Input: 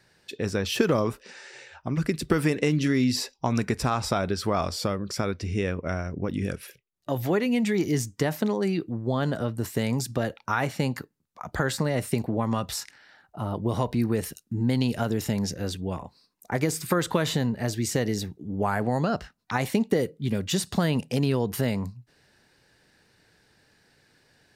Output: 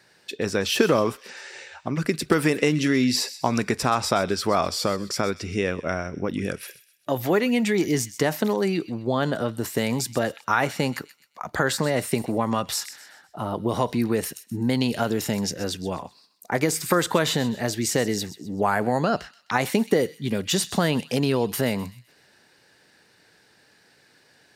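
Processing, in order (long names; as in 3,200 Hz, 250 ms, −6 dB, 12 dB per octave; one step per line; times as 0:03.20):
high-pass filter 260 Hz 6 dB per octave
on a send: delay with a high-pass on its return 128 ms, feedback 39%, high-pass 2,500 Hz, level −13.5 dB
on the sum: level +5 dB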